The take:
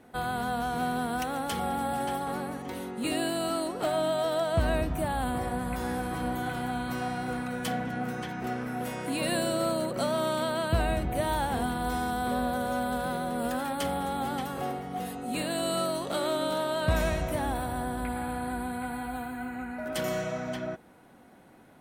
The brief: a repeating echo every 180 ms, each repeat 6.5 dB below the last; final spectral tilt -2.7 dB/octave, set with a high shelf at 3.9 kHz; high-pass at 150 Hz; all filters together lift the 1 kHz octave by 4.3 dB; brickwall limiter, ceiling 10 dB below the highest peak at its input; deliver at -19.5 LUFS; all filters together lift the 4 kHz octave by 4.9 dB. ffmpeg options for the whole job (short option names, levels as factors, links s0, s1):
-af "highpass=150,equalizer=f=1000:t=o:g=6,highshelf=f=3900:g=-3.5,equalizer=f=4000:t=o:g=7.5,alimiter=level_in=1.06:limit=0.0631:level=0:latency=1,volume=0.944,aecho=1:1:180|360|540|720|900|1080:0.473|0.222|0.105|0.0491|0.0231|0.0109,volume=4.22"